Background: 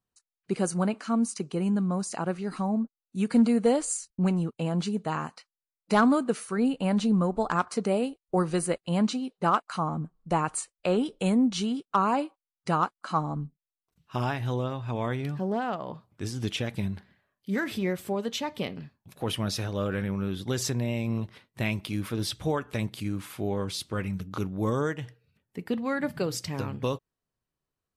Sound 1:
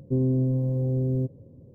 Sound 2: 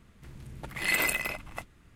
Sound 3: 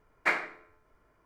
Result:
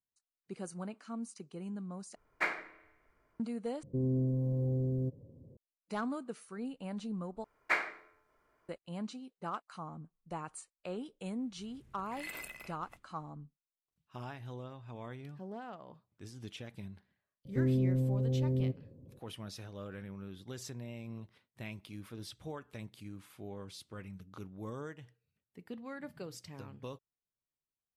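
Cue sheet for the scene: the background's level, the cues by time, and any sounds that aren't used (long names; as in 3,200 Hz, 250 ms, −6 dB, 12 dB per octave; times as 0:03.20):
background −15.5 dB
0:02.15: overwrite with 3 −6 dB + spring reverb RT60 1.2 s, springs 44 ms, chirp 65 ms, DRR 18.5 dB
0:03.83: overwrite with 1 −6.5 dB + brickwall limiter −19.5 dBFS
0:07.44: overwrite with 3 −3.5 dB + low-shelf EQ 220 Hz −10.5 dB
0:11.35: mix in 2 −17.5 dB
0:17.45: mix in 1 −6 dB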